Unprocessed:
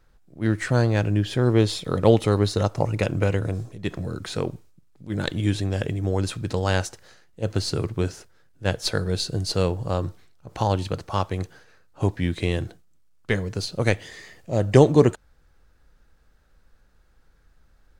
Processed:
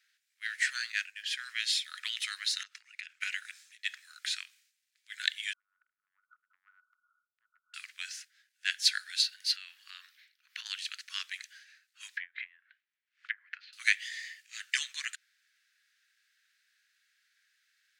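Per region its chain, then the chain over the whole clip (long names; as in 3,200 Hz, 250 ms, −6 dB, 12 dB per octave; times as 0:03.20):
0:00.92–0:01.77: high-pass filter 680 Hz + downward expander −35 dBFS + notch filter 3,500 Hz, Q 22
0:02.63–0:03.21: low-pass filter 3,800 Hz 6 dB per octave + downward compressor 16 to 1, threshold −30 dBFS
0:05.53–0:07.74: linear-phase brick-wall low-pass 1,500 Hz + downward compressor, threshold −38 dBFS
0:09.22–0:10.66: parametric band 7,700 Hz −12.5 dB 0.96 octaves + compressor whose output falls as the input rises −26 dBFS
0:12.17–0:13.73: treble cut that deepens with the level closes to 520 Hz, closed at −19 dBFS + low-pass filter 2,000 Hz + background raised ahead of every attack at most 140 dB per second
whole clip: Butterworth high-pass 1,700 Hz 48 dB per octave; high-shelf EQ 8,000 Hz −8 dB; level +3.5 dB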